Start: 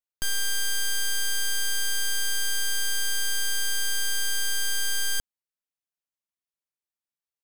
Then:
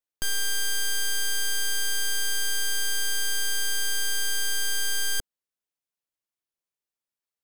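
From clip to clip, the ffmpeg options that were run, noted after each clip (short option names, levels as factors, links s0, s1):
-af "equalizer=f=450:w=1.3:g=3.5"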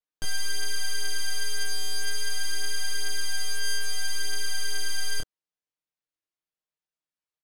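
-af "adynamicsmooth=sensitivity=6.5:basefreq=7300,aecho=1:1:6.5:0.64,flanger=delay=19.5:depth=7.2:speed=0.27"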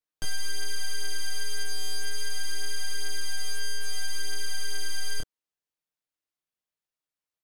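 -filter_complex "[0:a]acrossover=split=490[s0][s1];[s1]acompressor=threshold=0.0251:ratio=6[s2];[s0][s2]amix=inputs=2:normalize=0"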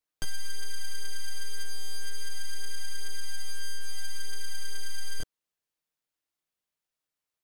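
-af "asoftclip=type=tanh:threshold=0.075,volume=1.33"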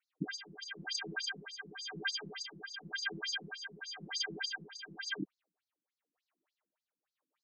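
-af "tremolo=f=0.94:d=0.63,adynamicsmooth=sensitivity=7:basefreq=2600,afftfilt=real='re*between(b*sr/1024,230*pow(5700/230,0.5+0.5*sin(2*PI*3.4*pts/sr))/1.41,230*pow(5700/230,0.5+0.5*sin(2*PI*3.4*pts/sr))*1.41)':imag='im*between(b*sr/1024,230*pow(5700/230,0.5+0.5*sin(2*PI*3.4*pts/sr))/1.41,230*pow(5700/230,0.5+0.5*sin(2*PI*3.4*pts/sr))*1.41)':win_size=1024:overlap=0.75,volume=7.5"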